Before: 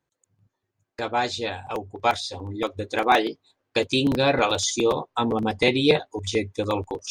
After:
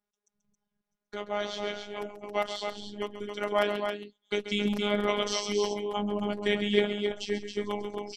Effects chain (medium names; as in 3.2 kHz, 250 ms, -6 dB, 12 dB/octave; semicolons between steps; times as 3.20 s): loudspeakers at several distances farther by 40 m -11 dB, 81 m -6 dB; tape speed -13%; robot voice 206 Hz; trim -6 dB